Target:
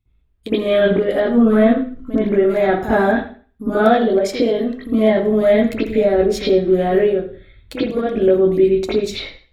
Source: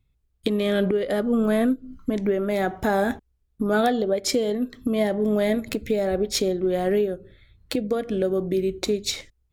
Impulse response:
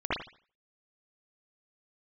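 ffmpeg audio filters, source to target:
-filter_complex "[0:a]asettb=1/sr,asplit=3[s0][s1][s2];[s0]atrim=end=1.304[s3];[s1]atrim=start=1.3:end=2.25,asetpts=PTS-STARTPTS,afade=t=in:d=0.004:c=qsin,afade=t=out:st=0.946:d=0.004:c=qsin,highshelf=f=6400:g=-5.5[s4];[s2]atrim=start=2.246[s5];[s3][s4]acrossfade=d=0.004:c1=hsin:c2=qsin[s6];[s6][s5]acrossfade=d=0.004:c1=qsin:c2=hsin[s7];[1:a]atrim=start_sample=2205[s8];[s7][s8]afir=irnorm=-1:irlink=0,volume=0.708"

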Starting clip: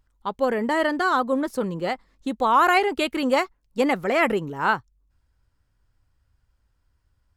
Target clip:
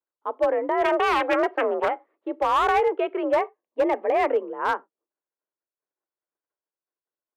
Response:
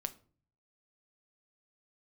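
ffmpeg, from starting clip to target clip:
-filter_complex "[0:a]agate=range=0.0224:threshold=0.00178:ratio=3:detection=peak,tiltshelf=f=1400:g=9,asplit=3[s0][s1][s2];[s0]afade=t=out:st=0.82:d=0.02[s3];[s1]aeval=exprs='0.562*(cos(1*acos(clip(val(0)/0.562,-1,1)))-cos(1*PI/2))+0.178*(cos(8*acos(clip(val(0)/0.562,-1,1)))-cos(8*PI/2))':c=same,afade=t=in:st=0.82:d=0.02,afade=t=out:st=1.88:d=0.02[s4];[s2]afade=t=in:st=1.88:d=0.02[s5];[s3][s4][s5]amix=inputs=3:normalize=0,highpass=f=330:t=q:w=0.5412,highpass=f=330:t=q:w=1.307,lowpass=f=2900:t=q:w=0.5176,lowpass=f=2900:t=q:w=0.7071,lowpass=f=2900:t=q:w=1.932,afreqshift=52,asettb=1/sr,asplit=3[s6][s7][s8];[s6]atrim=end=3.384[s9];[s7]atrim=start=3.38:end=4.24,asetpts=PTS-STARTPTS,afade=t=in:d=0.004:c=qsin,afade=t=out:st=0.856:d=0.004:c=qsin,asuperstop=centerf=1400:order=4:qfactor=5.2[s10];[s8]atrim=start=4.236[s11];[s9][s10]acrossfade=d=0.004:c1=hsin:c2=qsin[s12];[s12][s11]acrossfade=d=0.004:c1=qsin:c2=hsin,asplit=2[s13][s14];[1:a]atrim=start_sample=2205,atrim=end_sample=4410,highshelf=f=3800:g=-5[s15];[s14][s15]afir=irnorm=-1:irlink=0,volume=0.501[s16];[s13][s16]amix=inputs=2:normalize=0,asoftclip=type=hard:threshold=0.422,volume=0.422"

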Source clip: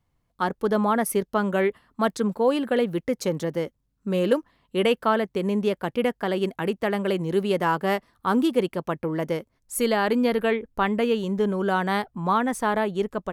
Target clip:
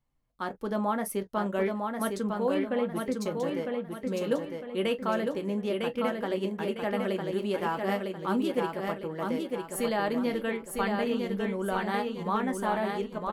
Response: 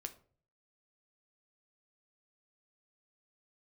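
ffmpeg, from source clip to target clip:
-filter_complex "[0:a]asettb=1/sr,asplit=3[s0][s1][s2];[s0]atrim=end=2.544[s3];[s1]atrim=start=2.54:end=3.17,asetpts=PTS-STARTPTS,afade=t=in:d=0.004:c=qsin,afade=t=out:st=0.626:d=0.004:c=qsin,bass=f=250:g=3,treble=f=4000:g=-11[s4];[s2]atrim=start=3.166[s5];[s3][s4]acrossfade=d=0.004:c1=hsin:c2=qsin[s6];[s6][s5]acrossfade=d=0.004:c1=qsin:c2=hsin,aecho=1:1:954|1908|2862|3816|4770:0.631|0.252|0.101|0.0404|0.0162[s7];[1:a]atrim=start_sample=2205,atrim=end_sample=3969,asetrate=79380,aresample=44100[s8];[s7][s8]afir=irnorm=-1:irlink=0,volume=1.12"

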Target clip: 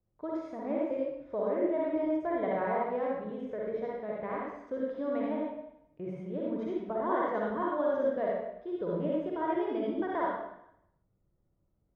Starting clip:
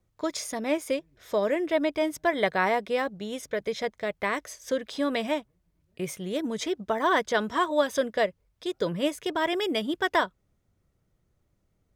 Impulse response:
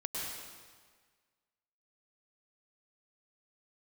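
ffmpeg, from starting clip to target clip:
-filter_complex "[0:a]lowpass=1000[s0];[1:a]atrim=start_sample=2205,asetrate=88200,aresample=44100[s1];[s0][s1]afir=irnorm=-1:irlink=0"

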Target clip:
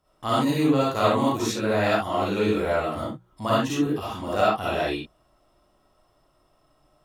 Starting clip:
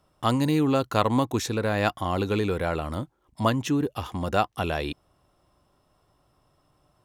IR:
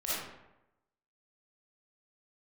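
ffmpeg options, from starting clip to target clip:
-filter_complex "[0:a]bandreject=f=60:t=h:w=6,bandreject=f=120:t=h:w=6,bandreject=f=180:t=h:w=6[s0];[1:a]atrim=start_sample=2205,atrim=end_sample=6174[s1];[s0][s1]afir=irnorm=-1:irlink=0,volume=0.75"

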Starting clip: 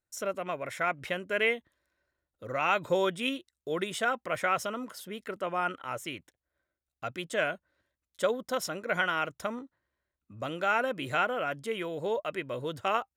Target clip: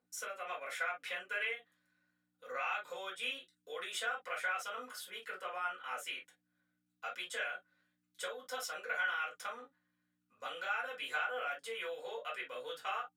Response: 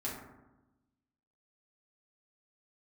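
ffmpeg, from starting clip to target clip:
-filter_complex "[0:a]acompressor=threshold=0.0251:ratio=6,aeval=exprs='val(0)+0.00355*(sin(2*PI*60*n/s)+sin(2*PI*2*60*n/s)/2+sin(2*PI*3*60*n/s)/3+sin(2*PI*4*60*n/s)/4+sin(2*PI*5*60*n/s)/5)':c=same,highpass=1100[s0];[1:a]atrim=start_sample=2205,afade=t=out:st=0.17:d=0.01,atrim=end_sample=7938,asetrate=83790,aresample=44100[s1];[s0][s1]afir=irnorm=-1:irlink=0,volume=1.58"

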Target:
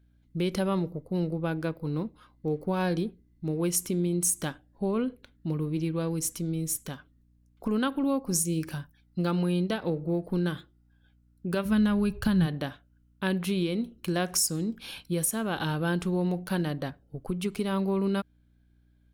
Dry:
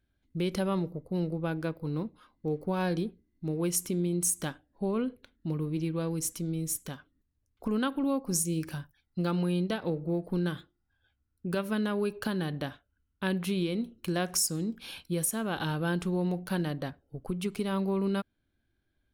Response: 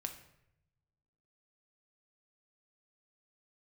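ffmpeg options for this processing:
-filter_complex "[0:a]aeval=exprs='val(0)+0.000631*(sin(2*PI*60*n/s)+sin(2*PI*2*60*n/s)/2+sin(2*PI*3*60*n/s)/3+sin(2*PI*4*60*n/s)/4+sin(2*PI*5*60*n/s)/5)':c=same,asplit=3[s0][s1][s2];[s0]afade=t=out:st=11.64:d=0.02[s3];[s1]asubboost=boost=10:cutoff=120,afade=t=in:st=11.64:d=0.02,afade=t=out:st=12.45:d=0.02[s4];[s2]afade=t=in:st=12.45:d=0.02[s5];[s3][s4][s5]amix=inputs=3:normalize=0,volume=1.26"

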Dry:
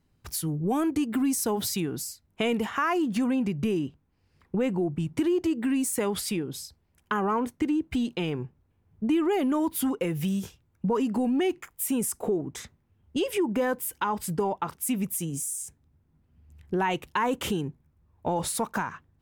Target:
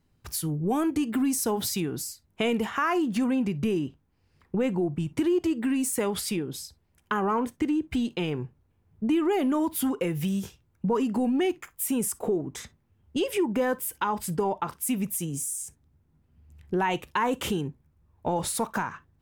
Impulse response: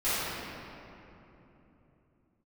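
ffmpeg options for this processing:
-filter_complex "[0:a]asplit=2[s0][s1];[1:a]atrim=start_sample=2205,atrim=end_sample=3969,asetrate=57330,aresample=44100[s2];[s1][s2]afir=irnorm=-1:irlink=0,volume=0.075[s3];[s0][s3]amix=inputs=2:normalize=0"

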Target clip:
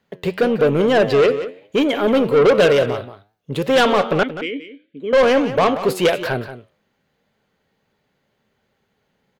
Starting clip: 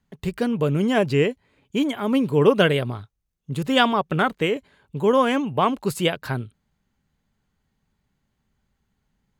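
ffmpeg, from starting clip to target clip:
-filter_complex "[0:a]equalizer=f=125:t=o:w=1:g=4,equalizer=f=500:t=o:w=1:g=10,equalizer=f=1000:t=o:w=1:g=-4,equalizer=f=8000:t=o:w=1:g=-8,flanger=delay=8.9:depth=2.9:regen=86:speed=1.9:shape=triangular,asettb=1/sr,asplit=3[s0][s1][s2];[s0]atrim=end=4.234[s3];[s1]atrim=start=4.23:end=5.13,asetpts=PTS-STARTPTS,afade=t=in:d=0.004:c=qsin,afade=t=out:st=0.896:d=0.004:c=qsin,asplit=3[s4][s5][s6];[s4]bandpass=f=270:t=q:w=8,volume=1[s7];[s5]bandpass=f=2290:t=q:w=8,volume=0.501[s8];[s6]bandpass=f=3010:t=q:w=8,volume=0.355[s9];[s7][s8][s9]amix=inputs=3:normalize=0[s10];[s2]atrim=start=5.126[s11];[s3][s10]acrossfade=d=0.004:c1=hsin:c2=qsin[s12];[s12][s11]acrossfade=d=0.004:c1=qsin:c2=hsin,asplit=2[s13][s14];[s14]highpass=f=720:p=1,volume=17.8,asoftclip=type=tanh:threshold=0.794[s15];[s13][s15]amix=inputs=2:normalize=0,lowpass=f=6500:p=1,volume=0.501,asplit=2[s16][s17];[s17]aecho=0:1:179:0.237[s18];[s16][s18]amix=inputs=2:normalize=0,volume=0.668"

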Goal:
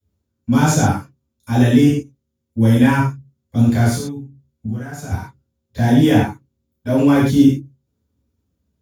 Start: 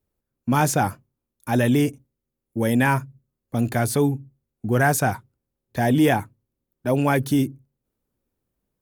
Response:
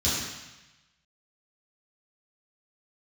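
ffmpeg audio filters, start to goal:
-filter_complex "[0:a]asettb=1/sr,asplit=3[s0][s1][s2];[s0]atrim=end=3.954[s3];[s1]atrim=start=3.95:end=5.11,asetpts=PTS-STARTPTS,afade=t=in:d=0.004:c=qsin,afade=t=out:st=1.156:d=0.004:c=qsin,acompressor=threshold=0.0282:ratio=16[s4];[s2]atrim=start=5.106[s5];[s3][s4]acrossfade=d=0.004:c1=hsin:c2=qsin[s6];[s6][s5]acrossfade=d=0.004:c1=qsin:c2=hsin[s7];[1:a]atrim=start_sample=2205,atrim=end_sample=6174[s8];[s7][s8]afir=irnorm=-1:irlink=0,volume=0.376"

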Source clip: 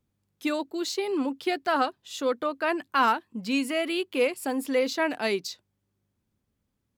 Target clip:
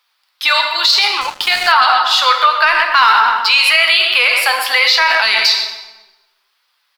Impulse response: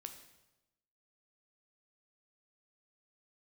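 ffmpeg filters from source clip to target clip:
-filter_complex "[0:a]highpass=f=990:w=0.5412,highpass=f=990:w=1.3066,asoftclip=type=tanh:threshold=0.126,asplit=2[s0][s1];[s1]adelay=125,lowpass=f=1900:p=1,volume=0.398,asplit=2[s2][s3];[s3]adelay=125,lowpass=f=1900:p=1,volume=0.53,asplit=2[s4][s5];[s5]adelay=125,lowpass=f=1900:p=1,volume=0.53,asplit=2[s6][s7];[s7]adelay=125,lowpass=f=1900:p=1,volume=0.53,asplit=2[s8][s9];[s9]adelay=125,lowpass=f=1900:p=1,volume=0.53,asplit=2[s10][s11];[s11]adelay=125,lowpass=f=1900:p=1,volume=0.53[s12];[s0][s2][s4][s6][s8][s10][s12]amix=inputs=7:normalize=0[s13];[1:a]atrim=start_sample=2205[s14];[s13][s14]afir=irnorm=-1:irlink=0,flanger=delay=3.9:depth=2:regen=68:speed=1.2:shape=triangular,highshelf=f=5700:t=q:w=3:g=-6.5,asettb=1/sr,asplit=3[s15][s16][s17];[s15]atrim=end=1.214[s18];[s16]atrim=start=1.21:end=1.72,asetpts=PTS-STARTPTS,afade=t=in:d=0.004:c=qsin,afade=t=out:st=0.506:d=0.004:c=qsin,aeval=exprs='sgn(val(0))*max(abs(val(0))-0.0015,0)':c=same[s19];[s17]atrim=start=1.716[s20];[s18][s19]acrossfade=d=0.004:c1=hsin:c2=qsin[s21];[s21][s20]acrossfade=d=0.004:c1=qsin:c2=hsin,alimiter=level_in=56.2:limit=0.891:release=50:level=0:latency=1,volume=0.891"

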